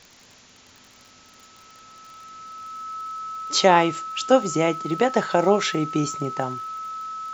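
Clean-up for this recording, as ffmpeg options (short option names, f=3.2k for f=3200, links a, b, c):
-af "adeclick=t=4,bandreject=f=1.3k:w=30,afwtdn=0.004"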